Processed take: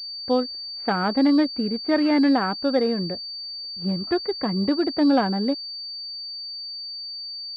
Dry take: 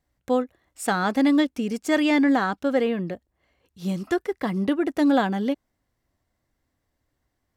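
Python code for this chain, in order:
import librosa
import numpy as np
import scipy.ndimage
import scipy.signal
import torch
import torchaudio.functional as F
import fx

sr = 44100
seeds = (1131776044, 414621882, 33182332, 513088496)

y = fx.air_absorb(x, sr, metres=290.0)
y = fx.pwm(y, sr, carrier_hz=4600.0)
y = y * 10.0 ** (1.5 / 20.0)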